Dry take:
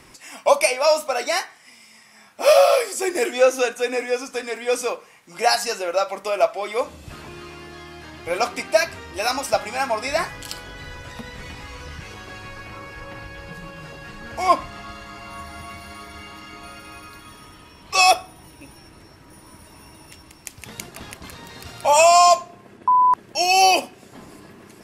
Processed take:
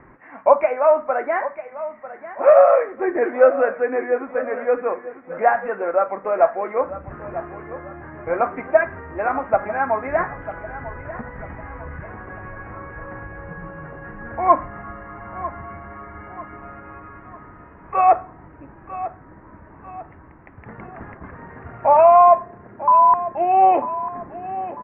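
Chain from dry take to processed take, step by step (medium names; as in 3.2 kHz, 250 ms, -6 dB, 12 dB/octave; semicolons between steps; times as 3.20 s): steep low-pass 1.9 kHz 48 dB/octave; on a send: feedback delay 946 ms, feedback 41%, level -14 dB; on the sum: trim +2.5 dB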